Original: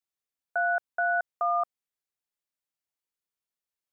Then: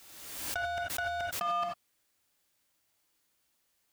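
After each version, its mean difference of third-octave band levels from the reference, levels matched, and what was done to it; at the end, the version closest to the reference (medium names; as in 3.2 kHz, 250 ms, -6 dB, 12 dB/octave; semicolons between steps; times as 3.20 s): 17.0 dB: compressor with a negative ratio -32 dBFS, ratio -0.5; hard clipper -33.5 dBFS, distortion -11 dB; gated-style reverb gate 110 ms rising, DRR -0.5 dB; swell ahead of each attack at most 41 dB/s; trim +3.5 dB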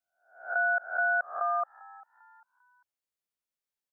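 1.5 dB: reverse spectral sustain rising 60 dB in 0.49 s; peaking EQ 550 Hz +3.5 dB 0.23 oct; frequency-shifting echo 397 ms, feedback 40%, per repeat +96 Hz, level -20 dB; dynamic bell 1.4 kHz, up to +7 dB, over -44 dBFS, Q 4.2; trim -4.5 dB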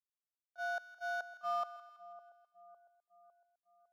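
8.5 dB: median filter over 15 samples; Bessel high-pass 340 Hz, order 8; gate -23 dBFS, range -43 dB; two-band feedback delay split 960 Hz, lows 555 ms, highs 164 ms, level -15.5 dB; trim +10 dB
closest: second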